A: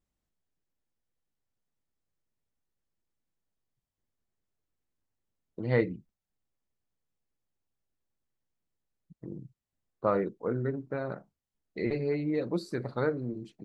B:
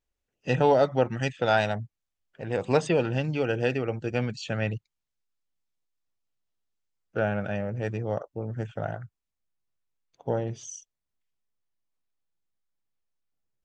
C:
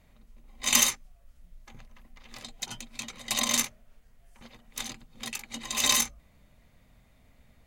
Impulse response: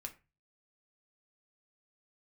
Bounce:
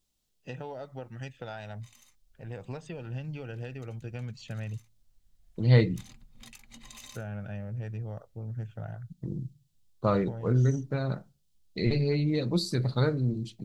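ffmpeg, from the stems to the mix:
-filter_complex "[0:a]highshelf=frequency=2600:width_type=q:width=1.5:gain=9.5,volume=-0.5dB,asplit=2[link_01][link_02];[link_02]volume=-4dB[link_03];[1:a]acompressor=threshold=-26dB:ratio=6,volume=-11.5dB,asplit=3[link_04][link_05][link_06];[link_05]volume=-12dB[link_07];[2:a]acompressor=threshold=-35dB:ratio=8,adelay=1200,volume=-11dB[link_08];[link_06]apad=whole_len=390783[link_09];[link_08][link_09]sidechaincompress=threshold=-50dB:ratio=8:attack=16:release=1350[link_10];[3:a]atrim=start_sample=2205[link_11];[link_03][link_07]amix=inputs=2:normalize=0[link_12];[link_12][link_11]afir=irnorm=-1:irlink=0[link_13];[link_01][link_04][link_10][link_13]amix=inputs=4:normalize=0,asubboost=boost=3.5:cutoff=180"

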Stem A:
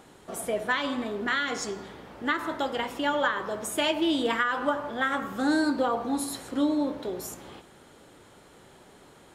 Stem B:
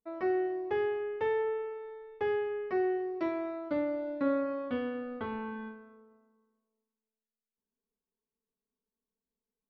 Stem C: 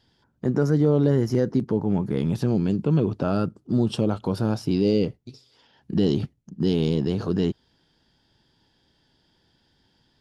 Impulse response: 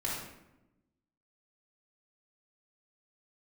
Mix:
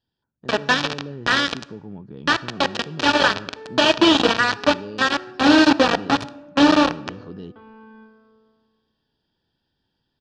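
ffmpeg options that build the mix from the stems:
-filter_complex "[0:a]adynamicequalizer=threshold=0.00708:dfrequency=1100:dqfactor=2.6:tfrequency=1100:tqfactor=2.6:attack=5:release=100:ratio=0.375:range=3:mode=cutabove:tftype=bell,acrusher=bits=3:mix=0:aa=0.000001,highpass=90,volume=2.5dB,asplit=2[link_01][link_02];[link_02]volume=-21dB[link_03];[1:a]adelay=2350,volume=-4.5dB[link_04];[2:a]acompressor=threshold=-28dB:ratio=1.5,volume=-16.5dB,asplit=2[link_05][link_06];[link_06]apad=whole_len=531018[link_07];[link_04][link_07]sidechaincompress=threshold=-52dB:ratio=6:attack=43:release=1080[link_08];[3:a]atrim=start_sample=2205[link_09];[link_03][link_09]afir=irnorm=-1:irlink=0[link_10];[link_01][link_08][link_05][link_10]amix=inputs=4:normalize=0,lowpass=frequency=5000:width=0.5412,lowpass=frequency=5000:width=1.3066,dynaudnorm=framelen=120:gausssize=9:maxgain=7dB,asuperstop=centerf=2100:order=4:qfactor=6.6"

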